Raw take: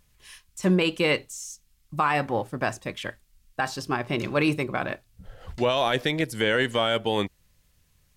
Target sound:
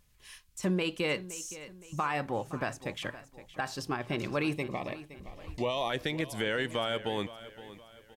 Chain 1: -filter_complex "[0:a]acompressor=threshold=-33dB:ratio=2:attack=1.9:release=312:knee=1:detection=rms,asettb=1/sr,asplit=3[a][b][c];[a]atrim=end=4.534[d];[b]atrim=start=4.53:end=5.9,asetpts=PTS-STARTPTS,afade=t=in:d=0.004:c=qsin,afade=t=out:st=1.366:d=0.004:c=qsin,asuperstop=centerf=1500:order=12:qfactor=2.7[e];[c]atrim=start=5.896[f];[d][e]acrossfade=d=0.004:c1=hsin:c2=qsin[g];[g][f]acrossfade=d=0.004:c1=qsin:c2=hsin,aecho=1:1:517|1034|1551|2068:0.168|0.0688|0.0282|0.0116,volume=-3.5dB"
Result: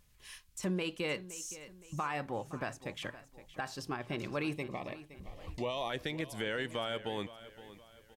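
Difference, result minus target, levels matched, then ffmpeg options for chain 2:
compressor: peak gain reduction +5 dB
-filter_complex "[0:a]acompressor=threshold=-23.5dB:ratio=2:attack=1.9:release=312:knee=1:detection=rms,asettb=1/sr,asplit=3[a][b][c];[a]atrim=end=4.534[d];[b]atrim=start=4.53:end=5.9,asetpts=PTS-STARTPTS,afade=t=in:d=0.004:c=qsin,afade=t=out:st=1.366:d=0.004:c=qsin,asuperstop=centerf=1500:order=12:qfactor=2.7[e];[c]atrim=start=5.896[f];[d][e]acrossfade=d=0.004:c1=hsin:c2=qsin[g];[g][f]acrossfade=d=0.004:c1=qsin:c2=hsin,aecho=1:1:517|1034|1551|2068:0.168|0.0688|0.0282|0.0116,volume=-3.5dB"

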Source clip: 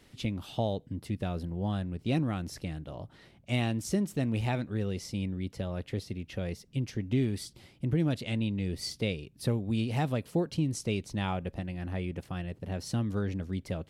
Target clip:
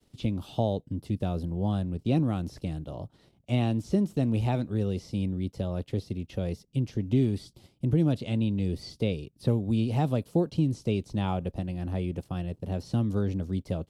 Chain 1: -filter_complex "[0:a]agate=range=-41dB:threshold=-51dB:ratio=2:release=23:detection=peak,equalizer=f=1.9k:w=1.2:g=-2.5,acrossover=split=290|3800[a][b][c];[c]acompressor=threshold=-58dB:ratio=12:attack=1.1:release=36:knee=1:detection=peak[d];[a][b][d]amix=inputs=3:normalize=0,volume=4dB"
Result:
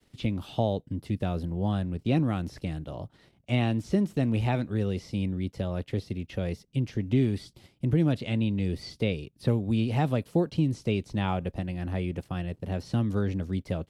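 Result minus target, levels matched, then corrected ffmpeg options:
2000 Hz band +5.5 dB
-filter_complex "[0:a]agate=range=-41dB:threshold=-51dB:ratio=2:release=23:detection=peak,equalizer=f=1.9k:w=1.2:g=-10.5,acrossover=split=290|3800[a][b][c];[c]acompressor=threshold=-58dB:ratio=12:attack=1.1:release=36:knee=1:detection=peak[d];[a][b][d]amix=inputs=3:normalize=0,volume=4dB"

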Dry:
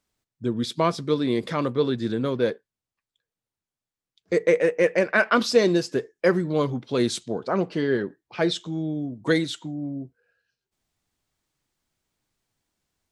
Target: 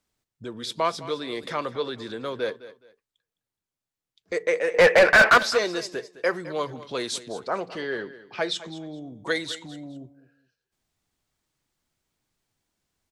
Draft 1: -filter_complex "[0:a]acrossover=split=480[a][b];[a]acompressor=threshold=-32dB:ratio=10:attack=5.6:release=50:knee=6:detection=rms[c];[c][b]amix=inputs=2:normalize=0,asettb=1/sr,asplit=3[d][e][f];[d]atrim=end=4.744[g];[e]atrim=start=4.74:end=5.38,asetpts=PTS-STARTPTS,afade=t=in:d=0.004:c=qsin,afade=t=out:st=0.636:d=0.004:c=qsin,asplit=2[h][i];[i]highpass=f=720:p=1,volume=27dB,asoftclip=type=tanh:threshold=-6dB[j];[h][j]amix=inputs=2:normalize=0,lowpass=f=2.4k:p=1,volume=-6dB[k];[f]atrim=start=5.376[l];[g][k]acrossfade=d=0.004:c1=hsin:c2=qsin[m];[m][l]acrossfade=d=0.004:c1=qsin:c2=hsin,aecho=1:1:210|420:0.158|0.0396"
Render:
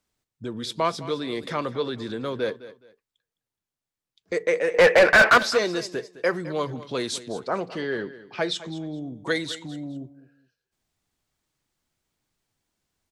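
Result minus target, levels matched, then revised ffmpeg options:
compressor: peak gain reduction -6.5 dB
-filter_complex "[0:a]acrossover=split=480[a][b];[a]acompressor=threshold=-39.5dB:ratio=10:attack=5.6:release=50:knee=6:detection=rms[c];[c][b]amix=inputs=2:normalize=0,asettb=1/sr,asplit=3[d][e][f];[d]atrim=end=4.744[g];[e]atrim=start=4.74:end=5.38,asetpts=PTS-STARTPTS,afade=t=in:d=0.004:c=qsin,afade=t=out:st=0.636:d=0.004:c=qsin,asplit=2[h][i];[i]highpass=f=720:p=1,volume=27dB,asoftclip=type=tanh:threshold=-6dB[j];[h][j]amix=inputs=2:normalize=0,lowpass=f=2.4k:p=1,volume=-6dB[k];[f]atrim=start=5.376[l];[g][k]acrossfade=d=0.004:c1=hsin:c2=qsin[m];[m][l]acrossfade=d=0.004:c1=qsin:c2=hsin,aecho=1:1:210|420:0.158|0.0396"

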